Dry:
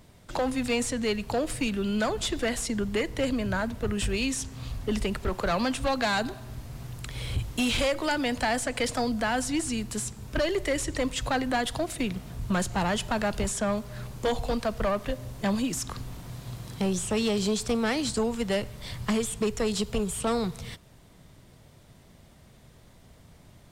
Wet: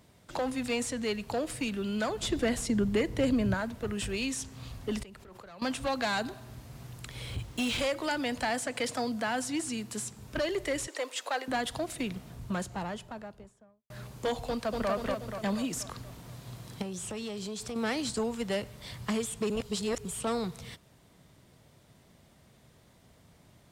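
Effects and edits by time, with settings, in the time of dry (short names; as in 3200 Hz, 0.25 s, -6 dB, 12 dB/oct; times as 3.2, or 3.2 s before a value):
2.22–3.54 low shelf 410 Hz +9 dB
5.03–5.62 level quantiser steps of 22 dB
7.3–7.81 median filter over 3 samples
8.5–10.13 HPF 110 Hz
10.87–11.48 HPF 410 Hz 24 dB/oct
12.07–13.9 studio fade out
14.48–14.9 echo throw 0.24 s, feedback 55%, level -2.5 dB
16.82–17.76 compressor, threshold -30 dBFS
19.5–20.05 reverse
whole clip: HPF 95 Hz 6 dB/oct; gain -4 dB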